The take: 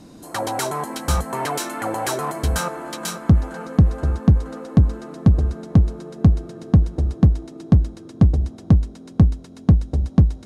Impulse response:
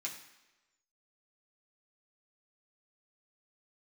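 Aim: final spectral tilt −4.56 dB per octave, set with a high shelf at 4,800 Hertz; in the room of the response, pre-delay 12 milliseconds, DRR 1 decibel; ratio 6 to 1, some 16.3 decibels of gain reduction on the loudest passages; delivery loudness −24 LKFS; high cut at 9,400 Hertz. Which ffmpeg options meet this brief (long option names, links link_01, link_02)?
-filter_complex "[0:a]lowpass=9400,highshelf=frequency=4800:gain=7,acompressor=threshold=-26dB:ratio=6,asplit=2[link_01][link_02];[1:a]atrim=start_sample=2205,adelay=12[link_03];[link_02][link_03]afir=irnorm=-1:irlink=0,volume=-1dB[link_04];[link_01][link_04]amix=inputs=2:normalize=0,volume=6dB"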